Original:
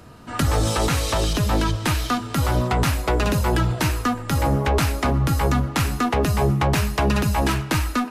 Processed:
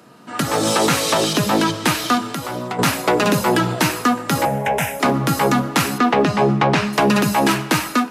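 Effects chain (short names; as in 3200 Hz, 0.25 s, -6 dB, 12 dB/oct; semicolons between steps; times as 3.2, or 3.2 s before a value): HPF 160 Hz 24 dB/oct; 2.3–2.79 compressor 2:1, threshold -37 dBFS, peak gain reduction 10 dB; 5.98–6.93 LPF 4400 Hz 12 dB/oct; AGC gain up to 8 dB; soft clip -3.5 dBFS, distortion -27 dB; 4.45–5 fixed phaser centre 1200 Hz, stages 6; reverb, pre-delay 3 ms, DRR 18 dB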